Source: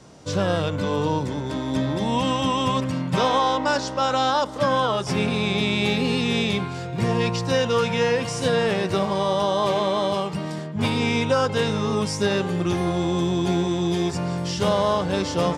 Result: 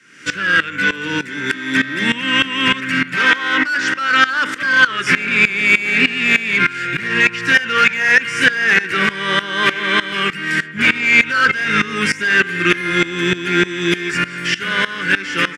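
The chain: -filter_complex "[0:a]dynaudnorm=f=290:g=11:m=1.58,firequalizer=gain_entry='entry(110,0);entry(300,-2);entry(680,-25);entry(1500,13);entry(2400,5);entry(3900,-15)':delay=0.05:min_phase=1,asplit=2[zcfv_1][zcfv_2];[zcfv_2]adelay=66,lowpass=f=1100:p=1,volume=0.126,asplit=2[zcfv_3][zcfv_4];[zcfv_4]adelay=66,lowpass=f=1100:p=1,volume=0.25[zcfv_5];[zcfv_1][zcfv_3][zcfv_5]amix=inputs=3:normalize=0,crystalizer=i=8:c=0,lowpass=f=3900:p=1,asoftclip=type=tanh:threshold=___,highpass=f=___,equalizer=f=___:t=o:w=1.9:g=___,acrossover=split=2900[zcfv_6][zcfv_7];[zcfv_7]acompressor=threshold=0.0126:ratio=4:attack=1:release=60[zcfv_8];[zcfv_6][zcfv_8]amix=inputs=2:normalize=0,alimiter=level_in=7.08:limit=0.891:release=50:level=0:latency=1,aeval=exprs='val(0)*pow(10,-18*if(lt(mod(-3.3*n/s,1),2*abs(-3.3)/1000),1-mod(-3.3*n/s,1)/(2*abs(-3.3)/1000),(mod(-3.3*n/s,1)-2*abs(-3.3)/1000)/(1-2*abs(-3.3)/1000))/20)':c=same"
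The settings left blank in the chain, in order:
0.335, 370, 1100, -9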